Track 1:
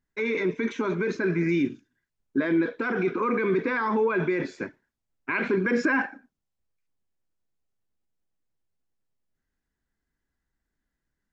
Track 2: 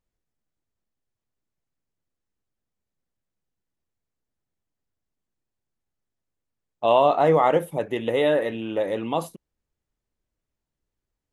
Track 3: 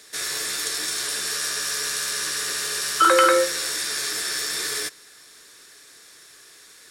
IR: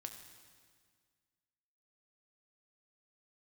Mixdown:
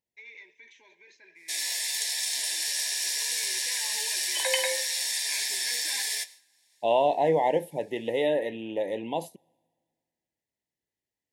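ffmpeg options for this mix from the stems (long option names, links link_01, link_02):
-filter_complex "[0:a]highpass=1400,volume=-7dB,afade=type=in:start_time=3.06:duration=0.4:silence=0.398107,asplit=2[link_01][link_02];[link_02]volume=-11.5dB[link_03];[1:a]highpass=74,volume=-4.5dB,asplit=2[link_04][link_05];[link_05]volume=-22dB[link_06];[2:a]highpass=frequency=700:width=0.5412,highpass=frequency=700:width=1.3066,agate=range=-33dB:threshold=-38dB:ratio=3:detection=peak,flanger=delay=3.8:depth=7.9:regen=-57:speed=0.31:shape=triangular,adelay=1350,volume=2dB[link_07];[3:a]atrim=start_sample=2205[link_08];[link_03][link_06]amix=inputs=2:normalize=0[link_09];[link_09][link_08]afir=irnorm=-1:irlink=0[link_10];[link_01][link_04][link_07][link_10]amix=inputs=4:normalize=0,asuperstop=centerf=1300:order=8:qfactor=1.7,lowshelf=frequency=120:gain=-10.5"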